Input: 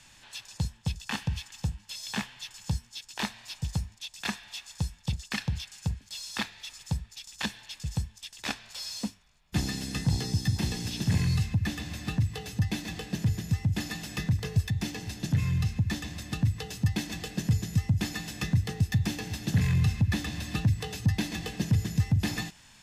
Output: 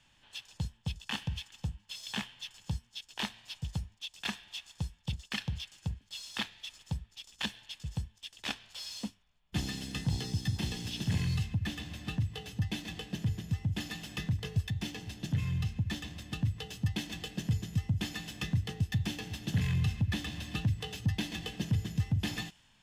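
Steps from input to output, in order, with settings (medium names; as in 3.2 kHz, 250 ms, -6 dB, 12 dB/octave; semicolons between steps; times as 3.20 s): peaking EQ 3.1 kHz +9.5 dB 0.35 oct; in parallel at -7 dB: hysteresis with a dead band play -36.5 dBFS; on the sum: tape noise reduction on one side only decoder only; trim -8.5 dB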